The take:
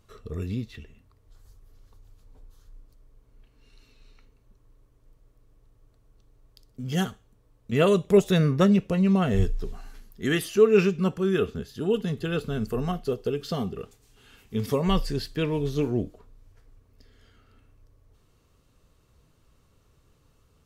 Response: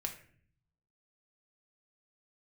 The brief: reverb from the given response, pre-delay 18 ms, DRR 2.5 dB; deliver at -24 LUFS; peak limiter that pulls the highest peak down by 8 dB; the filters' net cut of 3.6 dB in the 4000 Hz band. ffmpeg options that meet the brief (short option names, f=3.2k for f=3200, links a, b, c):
-filter_complex "[0:a]equalizer=f=4k:t=o:g=-5,alimiter=limit=-15.5dB:level=0:latency=1,asplit=2[a][b];[1:a]atrim=start_sample=2205,adelay=18[c];[b][c]afir=irnorm=-1:irlink=0,volume=-2.5dB[d];[a][d]amix=inputs=2:normalize=0,volume=2dB"